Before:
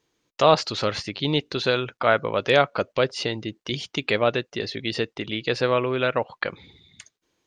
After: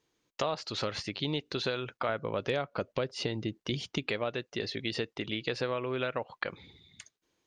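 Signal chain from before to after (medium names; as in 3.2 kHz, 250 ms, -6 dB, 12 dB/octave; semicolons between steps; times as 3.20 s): 2.09–4.10 s: bass shelf 440 Hz +6.5 dB; compression 6:1, threshold -24 dBFS, peak gain reduction 13.5 dB; trim -4.5 dB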